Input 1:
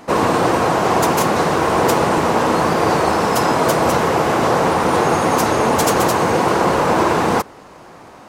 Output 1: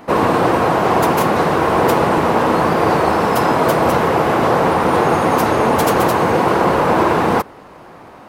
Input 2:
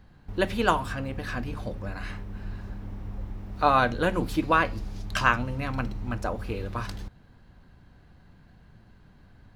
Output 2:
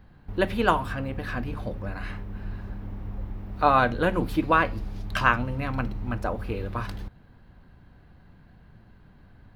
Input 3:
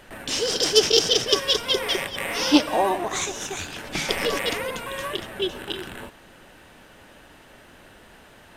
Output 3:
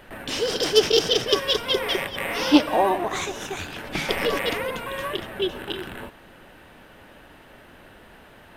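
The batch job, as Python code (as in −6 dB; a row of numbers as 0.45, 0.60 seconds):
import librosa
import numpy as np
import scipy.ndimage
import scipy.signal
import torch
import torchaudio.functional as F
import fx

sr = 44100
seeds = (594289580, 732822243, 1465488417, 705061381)

y = fx.peak_eq(x, sr, hz=6800.0, db=-9.0, octaves=1.3)
y = F.gain(torch.from_numpy(y), 1.5).numpy()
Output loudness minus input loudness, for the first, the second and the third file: +1.0, +1.0, −0.5 LU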